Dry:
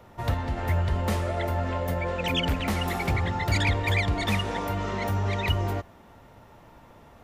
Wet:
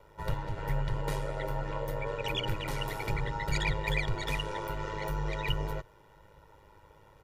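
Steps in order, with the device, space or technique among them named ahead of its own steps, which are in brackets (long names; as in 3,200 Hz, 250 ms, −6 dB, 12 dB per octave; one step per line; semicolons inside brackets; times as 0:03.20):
ring-modulated robot voice (ring modulation 52 Hz; comb filter 2.1 ms, depth 75%)
level −5.5 dB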